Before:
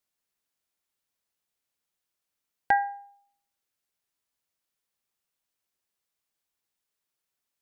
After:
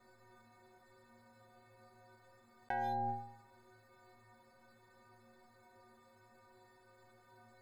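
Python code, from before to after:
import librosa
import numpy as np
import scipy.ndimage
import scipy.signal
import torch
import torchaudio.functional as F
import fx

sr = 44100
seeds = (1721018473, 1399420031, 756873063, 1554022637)

y = fx.wiener(x, sr, points=15)
y = fx.high_shelf(y, sr, hz=2700.0, db=-7.5)
y = fx.stiff_resonator(y, sr, f0_hz=110.0, decay_s=0.83, stiffness=0.03)
y = fx.env_flatten(y, sr, amount_pct=100)
y = y * librosa.db_to_amplitude(7.5)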